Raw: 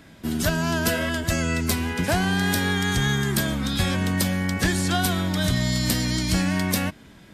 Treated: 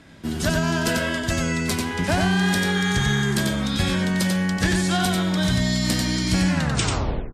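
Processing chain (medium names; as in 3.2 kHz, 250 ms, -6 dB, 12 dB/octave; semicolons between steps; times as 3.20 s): tape stop on the ending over 0.85 s; low-pass 9.3 kHz 12 dB/octave; on a send: delay 92 ms -4 dB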